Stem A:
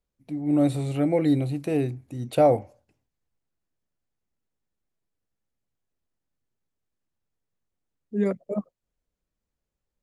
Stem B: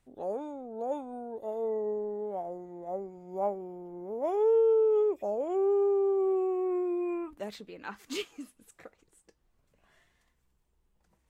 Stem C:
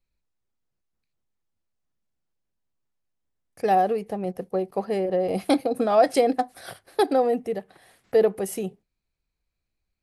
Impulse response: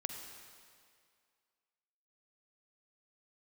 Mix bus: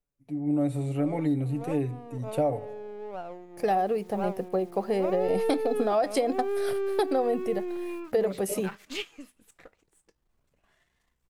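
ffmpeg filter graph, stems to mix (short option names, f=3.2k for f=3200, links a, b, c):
-filter_complex "[0:a]equalizer=f=4k:w=1.5:g=-6.5,aecho=1:1:7:0.67,volume=-5.5dB,asplit=3[a][b][c];[b]volume=-21.5dB[d];[1:a]aeval=exprs='if(lt(val(0),0),0.447*val(0),val(0))':c=same,adynamicequalizer=threshold=0.00224:dfrequency=2500:dqfactor=0.81:tfrequency=2500:tqfactor=0.81:attack=5:release=100:ratio=0.375:range=3.5:mode=boostabove:tftype=bell,adelay=800,volume=0dB[e];[2:a]acrusher=bits=9:mix=0:aa=0.000001,volume=0dB[f];[c]apad=whole_len=533253[g];[e][g]sidechaincompress=threshold=-23dB:ratio=8:attack=7.4:release=946[h];[d]aecho=0:1:76|152|228|304|380|456|532|608:1|0.54|0.292|0.157|0.085|0.0459|0.0248|0.0134[i];[a][h][f][i]amix=inputs=4:normalize=0,acompressor=threshold=-22dB:ratio=5"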